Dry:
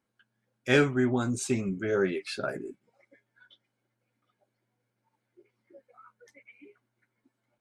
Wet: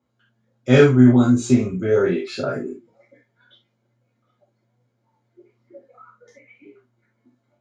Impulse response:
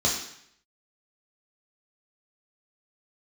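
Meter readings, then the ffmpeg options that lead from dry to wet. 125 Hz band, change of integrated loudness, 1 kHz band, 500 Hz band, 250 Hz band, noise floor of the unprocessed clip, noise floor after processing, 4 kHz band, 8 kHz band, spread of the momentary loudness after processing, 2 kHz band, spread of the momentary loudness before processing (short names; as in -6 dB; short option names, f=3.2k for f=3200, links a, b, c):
+14.0 dB, +11.5 dB, +6.5 dB, +10.0 dB, +13.5 dB, -82 dBFS, -71 dBFS, +4.5 dB, +3.0 dB, 17 LU, +3.5 dB, 15 LU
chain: -filter_complex "[0:a]lowpass=f=3.6k:p=1,flanger=delay=7.2:depth=2:regen=86:speed=1.2:shape=triangular[a];[1:a]atrim=start_sample=2205,afade=t=out:st=0.13:d=0.01,atrim=end_sample=6174[b];[a][b]afir=irnorm=-1:irlink=0"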